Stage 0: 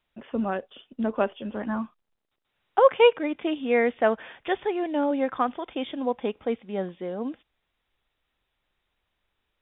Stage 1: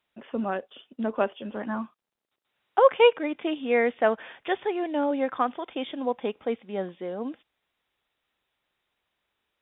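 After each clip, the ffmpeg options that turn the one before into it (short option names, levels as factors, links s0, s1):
-af "highpass=f=200:p=1"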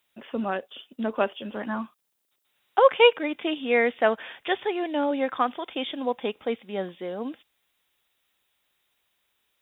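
-af "crystalizer=i=3.5:c=0"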